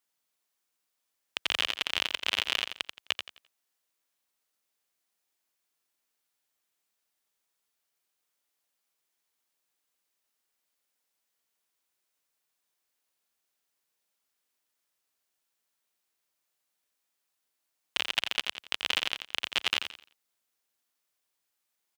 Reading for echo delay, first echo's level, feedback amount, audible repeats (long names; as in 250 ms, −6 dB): 86 ms, −8.0 dB, 30%, 3